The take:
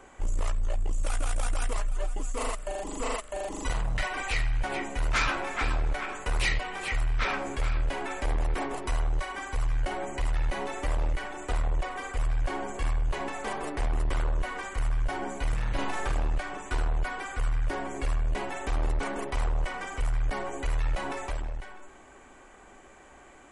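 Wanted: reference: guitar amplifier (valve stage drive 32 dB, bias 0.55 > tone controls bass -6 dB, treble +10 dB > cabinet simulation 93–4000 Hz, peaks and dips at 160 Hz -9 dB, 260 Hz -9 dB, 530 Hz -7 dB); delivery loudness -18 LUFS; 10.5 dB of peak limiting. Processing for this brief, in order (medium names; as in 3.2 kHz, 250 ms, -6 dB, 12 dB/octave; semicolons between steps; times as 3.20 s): peak limiter -28.5 dBFS; valve stage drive 32 dB, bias 0.55; tone controls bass -6 dB, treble +10 dB; cabinet simulation 93–4000 Hz, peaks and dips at 160 Hz -9 dB, 260 Hz -9 dB, 530 Hz -7 dB; trim +25.5 dB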